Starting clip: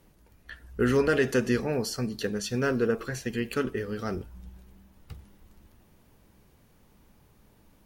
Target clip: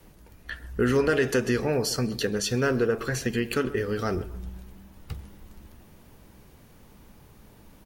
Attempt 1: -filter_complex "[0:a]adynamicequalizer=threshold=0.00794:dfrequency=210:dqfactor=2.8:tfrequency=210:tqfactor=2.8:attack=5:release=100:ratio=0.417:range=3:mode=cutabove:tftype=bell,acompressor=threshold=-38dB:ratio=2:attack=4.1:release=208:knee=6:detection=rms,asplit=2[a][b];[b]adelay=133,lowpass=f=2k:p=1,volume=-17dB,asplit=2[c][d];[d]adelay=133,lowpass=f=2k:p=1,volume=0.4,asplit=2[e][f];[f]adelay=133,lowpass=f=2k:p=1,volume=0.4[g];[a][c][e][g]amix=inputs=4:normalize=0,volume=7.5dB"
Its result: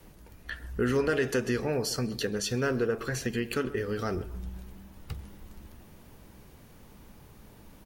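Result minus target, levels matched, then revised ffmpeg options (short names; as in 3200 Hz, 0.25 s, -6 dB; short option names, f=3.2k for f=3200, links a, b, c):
compressor: peak gain reduction +4 dB
-filter_complex "[0:a]adynamicequalizer=threshold=0.00794:dfrequency=210:dqfactor=2.8:tfrequency=210:tqfactor=2.8:attack=5:release=100:ratio=0.417:range=3:mode=cutabove:tftype=bell,acompressor=threshold=-30dB:ratio=2:attack=4.1:release=208:knee=6:detection=rms,asplit=2[a][b];[b]adelay=133,lowpass=f=2k:p=1,volume=-17dB,asplit=2[c][d];[d]adelay=133,lowpass=f=2k:p=1,volume=0.4,asplit=2[e][f];[f]adelay=133,lowpass=f=2k:p=1,volume=0.4[g];[a][c][e][g]amix=inputs=4:normalize=0,volume=7.5dB"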